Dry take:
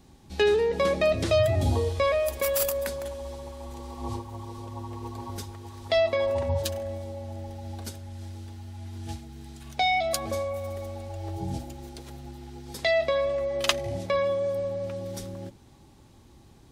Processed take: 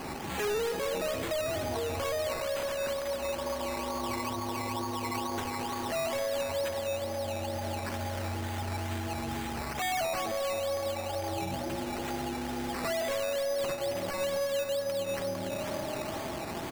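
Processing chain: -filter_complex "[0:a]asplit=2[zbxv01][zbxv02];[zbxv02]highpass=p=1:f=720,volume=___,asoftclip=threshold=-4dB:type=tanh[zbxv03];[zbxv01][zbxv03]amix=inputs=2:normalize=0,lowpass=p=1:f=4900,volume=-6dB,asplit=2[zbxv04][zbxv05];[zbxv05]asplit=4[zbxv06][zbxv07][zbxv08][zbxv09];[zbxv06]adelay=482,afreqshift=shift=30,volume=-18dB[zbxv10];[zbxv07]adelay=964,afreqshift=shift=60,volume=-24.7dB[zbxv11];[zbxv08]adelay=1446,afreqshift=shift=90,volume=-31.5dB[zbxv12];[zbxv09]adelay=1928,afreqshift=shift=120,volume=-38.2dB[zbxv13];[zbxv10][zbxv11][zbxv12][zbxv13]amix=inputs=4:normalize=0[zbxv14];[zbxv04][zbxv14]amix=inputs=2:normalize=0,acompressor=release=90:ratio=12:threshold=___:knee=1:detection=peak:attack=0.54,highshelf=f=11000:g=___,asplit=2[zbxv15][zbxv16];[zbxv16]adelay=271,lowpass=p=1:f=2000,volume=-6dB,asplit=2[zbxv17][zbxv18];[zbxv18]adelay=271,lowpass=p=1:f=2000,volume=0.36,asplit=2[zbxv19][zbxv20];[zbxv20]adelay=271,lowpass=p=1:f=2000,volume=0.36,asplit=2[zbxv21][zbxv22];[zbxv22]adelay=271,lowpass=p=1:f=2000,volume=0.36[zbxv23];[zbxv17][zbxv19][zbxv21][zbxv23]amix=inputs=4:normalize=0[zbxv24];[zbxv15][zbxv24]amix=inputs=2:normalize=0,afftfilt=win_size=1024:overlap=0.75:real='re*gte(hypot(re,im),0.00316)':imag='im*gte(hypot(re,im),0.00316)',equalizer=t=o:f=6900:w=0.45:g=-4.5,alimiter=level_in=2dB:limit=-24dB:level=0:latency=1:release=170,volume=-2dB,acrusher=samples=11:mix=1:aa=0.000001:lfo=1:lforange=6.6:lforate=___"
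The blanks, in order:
31dB, -26dB, -2, 2.2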